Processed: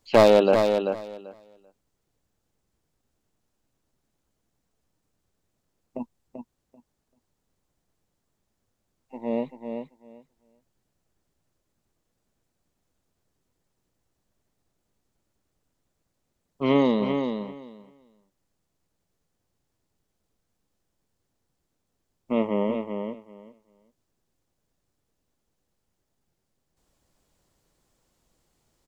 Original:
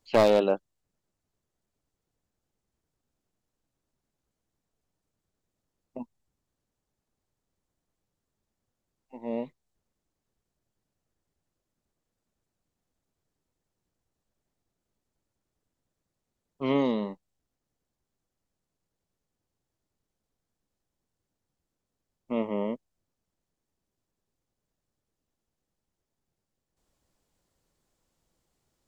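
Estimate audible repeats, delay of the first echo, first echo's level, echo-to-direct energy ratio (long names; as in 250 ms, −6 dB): 2, 388 ms, −6.5 dB, −6.5 dB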